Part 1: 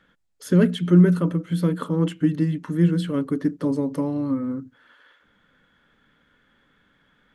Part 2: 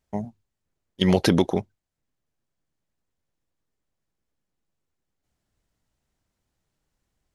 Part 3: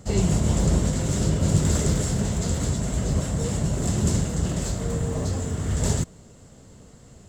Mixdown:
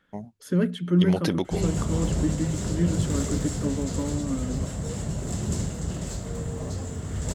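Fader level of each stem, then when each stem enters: −6.0, −7.0, −5.5 decibels; 0.00, 0.00, 1.45 seconds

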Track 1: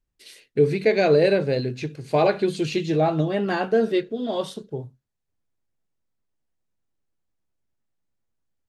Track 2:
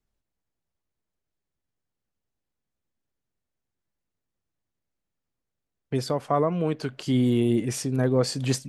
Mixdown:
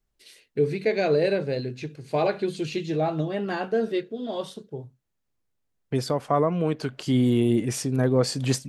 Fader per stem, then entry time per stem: −4.5, +1.0 decibels; 0.00, 0.00 seconds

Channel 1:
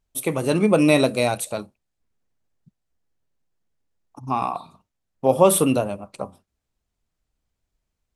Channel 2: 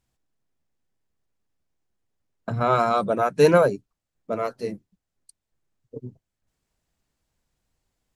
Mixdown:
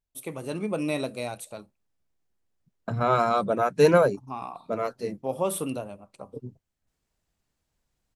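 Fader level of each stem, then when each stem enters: −12.0, −2.0 decibels; 0.00, 0.40 seconds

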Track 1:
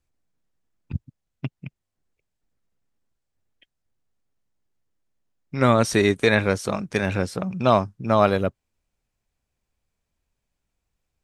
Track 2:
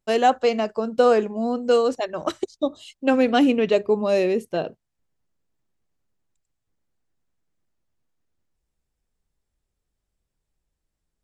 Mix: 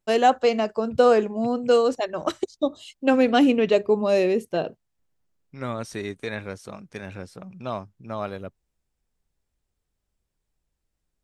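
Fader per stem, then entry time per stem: −13.0, 0.0 decibels; 0.00, 0.00 seconds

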